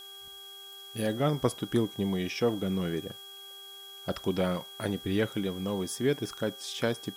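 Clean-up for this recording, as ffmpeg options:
ffmpeg -i in.wav -af "adeclick=threshold=4,bandreject=frequency=394.1:width_type=h:width=4,bandreject=frequency=788.2:width_type=h:width=4,bandreject=frequency=1182.3:width_type=h:width=4,bandreject=frequency=1576.4:width_type=h:width=4,bandreject=frequency=3300:width=30,afftdn=noise_reduction=28:noise_floor=-47" out.wav

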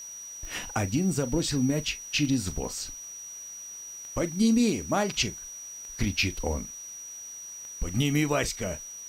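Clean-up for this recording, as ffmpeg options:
ffmpeg -i in.wav -af "adeclick=threshold=4,bandreject=frequency=5800:width=30,afwtdn=0.002" out.wav

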